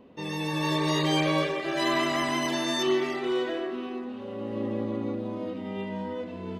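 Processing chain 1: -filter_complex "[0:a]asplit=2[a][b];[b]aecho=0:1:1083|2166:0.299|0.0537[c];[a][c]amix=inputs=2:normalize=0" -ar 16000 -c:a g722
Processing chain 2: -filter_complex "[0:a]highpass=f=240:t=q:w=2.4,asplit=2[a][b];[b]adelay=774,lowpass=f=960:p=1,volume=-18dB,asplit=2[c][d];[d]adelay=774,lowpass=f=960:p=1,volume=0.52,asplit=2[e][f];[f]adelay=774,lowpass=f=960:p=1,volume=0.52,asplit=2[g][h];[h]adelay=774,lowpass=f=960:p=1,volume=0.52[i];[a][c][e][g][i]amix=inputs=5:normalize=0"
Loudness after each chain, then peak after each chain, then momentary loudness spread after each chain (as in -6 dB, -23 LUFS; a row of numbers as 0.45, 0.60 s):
-28.5, -25.5 LUFS; -13.5, -9.5 dBFS; 9, 8 LU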